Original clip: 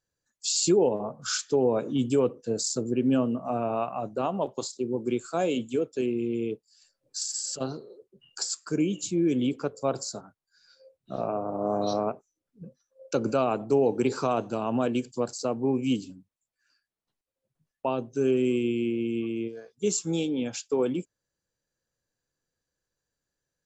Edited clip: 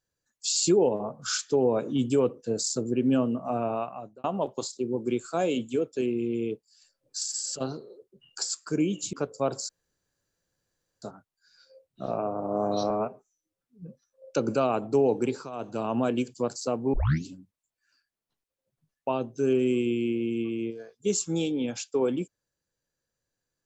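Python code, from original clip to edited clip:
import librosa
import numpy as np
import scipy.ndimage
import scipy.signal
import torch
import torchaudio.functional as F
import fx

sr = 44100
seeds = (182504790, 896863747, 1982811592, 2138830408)

y = fx.edit(x, sr, fx.fade_out_span(start_s=3.67, length_s=0.57),
    fx.cut(start_s=9.13, length_s=0.43),
    fx.insert_room_tone(at_s=10.12, length_s=1.33),
    fx.stretch_span(start_s=12.0, length_s=0.65, factor=1.5),
    fx.fade_down_up(start_s=13.95, length_s=0.65, db=-14.0, fade_s=0.31),
    fx.tape_start(start_s=15.71, length_s=0.32), tone=tone)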